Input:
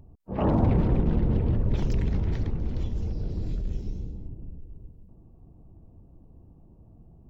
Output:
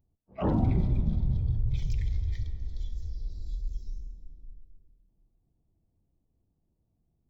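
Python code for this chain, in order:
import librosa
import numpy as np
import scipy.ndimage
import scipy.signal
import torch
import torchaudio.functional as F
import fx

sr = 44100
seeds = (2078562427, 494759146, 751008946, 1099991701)

y = fx.noise_reduce_blind(x, sr, reduce_db=20)
y = fx.rev_freeverb(y, sr, rt60_s=2.4, hf_ratio=0.8, predelay_ms=10, drr_db=10.5)
y = y * librosa.db_to_amplitude(-3.0)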